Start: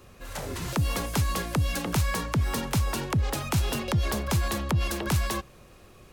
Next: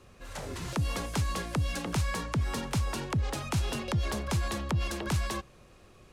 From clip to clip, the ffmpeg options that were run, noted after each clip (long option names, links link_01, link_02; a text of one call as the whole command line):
ffmpeg -i in.wav -af "lowpass=10000,volume=-4dB" out.wav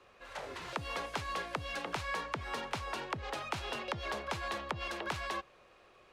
ffmpeg -i in.wav -filter_complex "[0:a]acrossover=split=410 4200:gain=0.141 1 0.2[link_01][link_02][link_03];[link_01][link_02][link_03]amix=inputs=3:normalize=0" out.wav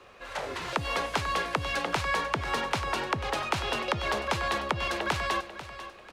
ffmpeg -i in.wav -af "aecho=1:1:492|984|1476:0.224|0.0784|0.0274,volume=8.5dB" out.wav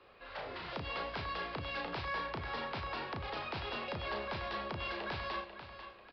ffmpeg -i in.wav -filter_complex "[0:a]aresample=11025,asoftclip=type=tanh:threshold=-24.5dB,aresample=44100,flanger=delay=9.2:depth=4:regen=-90:speed=0.56:shape=sinusoidal,asplit=2[link_01][link_02];[link_02]adelay=34,volume=-5dB[link_03];[link_01][link_03]amix=inputs=2:normalize=0,volume=-4dB" out.wav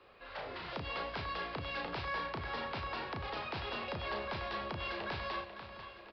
ffmpeg -i in.wav -af "aecho=1:1:1056:0.158" out.wav